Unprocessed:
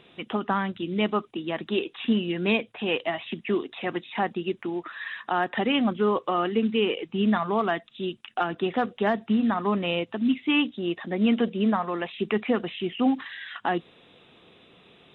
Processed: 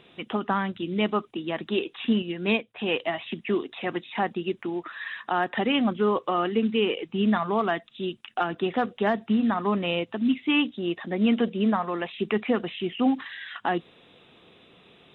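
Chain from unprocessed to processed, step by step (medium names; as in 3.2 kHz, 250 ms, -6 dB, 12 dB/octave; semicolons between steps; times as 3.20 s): 2.22–2.76 s: upward expansion 1.5:1, over -40 dBFS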